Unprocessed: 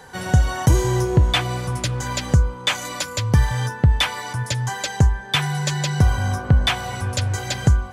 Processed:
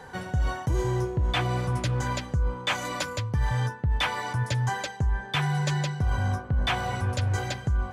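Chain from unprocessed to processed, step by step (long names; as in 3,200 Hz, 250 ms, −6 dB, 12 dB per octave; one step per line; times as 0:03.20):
high-shelf EQ 3,600 Hz −10 dB
reversed playback
downward compressor 10 to 1, threshold −22 dBFS, peak gain reduction 13.5 dB
reversed playback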